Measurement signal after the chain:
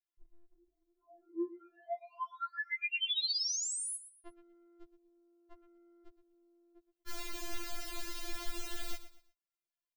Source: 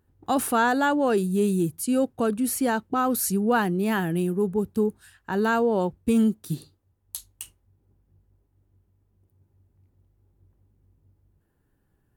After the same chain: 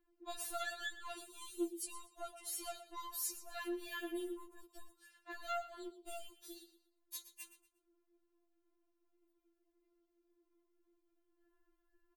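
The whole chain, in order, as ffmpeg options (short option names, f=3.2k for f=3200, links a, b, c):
-filter_complex "[0:a]equalizer=f=11k:t=o:w=1.6:g=-9,acrossover=split=140|3000[a][b][c];[b]acompressor=threshold=-46dB:ratio=2[d];[a][d][c]amix=inputs=3:normalize=0,aecho=1:1:119|238|357:0.2|0.0579|0.0168,acrossover=split=170|1400[e][f][g];[f]asoftclip=type=tanh:threshold=-34dB[h];[e][h][g]amix=inputs=3:normalize=0,afftfilt=real='re*4*eq(mod(b,16),0)':imag='im*4*eq(mod(b,16),0)':win_size=2048:overlap=0.75,volume=-2.5dB"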